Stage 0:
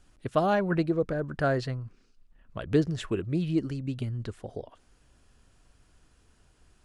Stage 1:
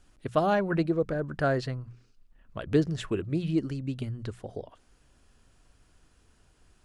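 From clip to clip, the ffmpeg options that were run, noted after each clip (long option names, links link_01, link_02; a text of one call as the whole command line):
ffmpeg -i in.wav -af "bandreject=frequency=60:width_type=h:width=6,bandreject=frequency=120:width_type=h:width=6,bandreject=frequency=180:width_type=h:width=6" out.wav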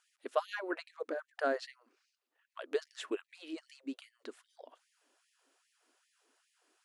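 ffmpeg -i in.wav -af "afftfilt=real='re*gte(b*sr/1024,230*pow(1800/230,0.5+0.5*sin(2*PI*2.5*pts/sr)))':imag='im*gte(b*sr/1024,230*pow(1800/230,0.5+0.5*sin(2*PI*2.5*pts/sr)))':win_size=1024:overlap=0.75,volume=-5dB" out.wav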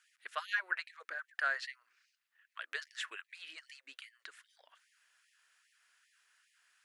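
ffmpeg -i in.wav -af "highpass=frequency=1700:width_type=q:width=2.4,volume=1dB" out.wav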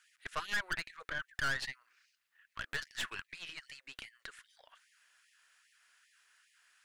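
ffmpeg -i in.wav -af "aeval=exprs='(tanh(70.8*val(0)+0.7)-tanh(0.7))/70.8':channel_layout=same,volume=7dB" out.wav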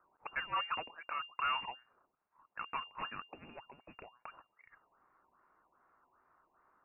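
ffmpeg -i in.wav -af "lowpass=frequency=2400:width_type=q:width=0.5098,lowpass=frequency=2400:width_type=q:width=0.6013,lowpass=frequency=2400:width_type=q:width=0.9,lowpass=frequency=2400:width_type=q:width=2.563,afreqshift=-2800" out.wav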